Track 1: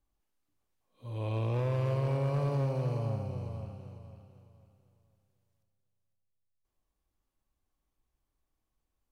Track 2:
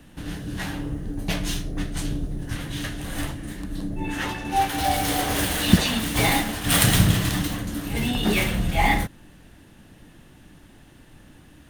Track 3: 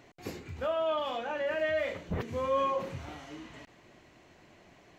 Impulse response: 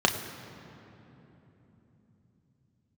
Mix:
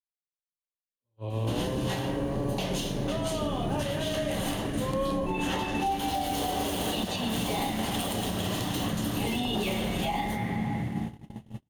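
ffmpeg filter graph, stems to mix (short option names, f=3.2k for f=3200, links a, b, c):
-filter_complex "[0:a]lowshelf=f=150:g=10,dynaudnorm=f=240:g=7:m=8dB,volume=-11dB,asplit=2[a][b];[b]volume=-15dB[c];[1:a]adelay=1300,volume=2.5dB,asplit=2[d][e];[e]volume=-14.5dB[f];[2:a]adelay=2450,volume=-9.5dB,asplit=2[g][h];[h]volume=-4.5dB[i];[3:a]atrim=start_sample=2205[j];[c][f][i]amix=inputs=3:normalize=0[k];[k][j]afir=irnorm=-1:irlink=0[l];[a][d][g][l]amix=inputs=4:normalize=0,acrossover=split=150|420|930[m][n][o][p];[m]acompressor=threshold=-34dB:ratio=4[q];[n]acompressor=threshold=-27dB:ratio=4[r];[o]acompressor=threshold=-27dB:ratio=4[s];[p]acompressor=threshold=-28dB:ratio=4[t];[q][r][s][t]amix=inputs=4:normalize=0,agate=range=-41dB:threshold=-30dB:ratio=16:detection=peak,alimiter=limit=-20dB:level=0:latency=1:release=297"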